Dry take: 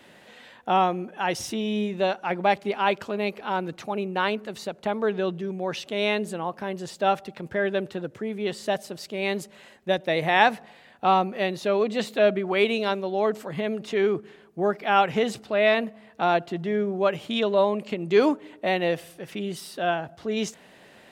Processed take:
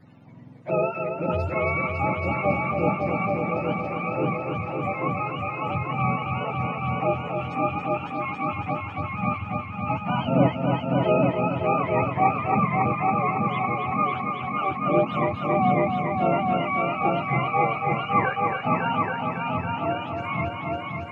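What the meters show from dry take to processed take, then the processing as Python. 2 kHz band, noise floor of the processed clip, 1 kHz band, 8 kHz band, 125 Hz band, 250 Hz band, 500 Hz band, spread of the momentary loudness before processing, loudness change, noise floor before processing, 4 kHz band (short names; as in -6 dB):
-0.5 dB, -35 dBFS, +3.0 dB, under -25 dB, +10.0 dB, +2.0 dB, -2.5 dB, 10 LU, +0.5 dB, -53 dBFS, -8.5 dB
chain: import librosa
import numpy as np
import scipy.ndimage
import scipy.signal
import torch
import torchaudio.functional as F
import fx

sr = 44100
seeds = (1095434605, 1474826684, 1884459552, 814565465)

y = fx.octave_mirror(x, sr, pivot_hz=690.0)
y = fx.echo_heads(y, sr, ms=277, heads='all three', feedback_pct=50, wet_db=-6.0)
y = F.gain(torch.from_numpy(y), -1.5).numpy()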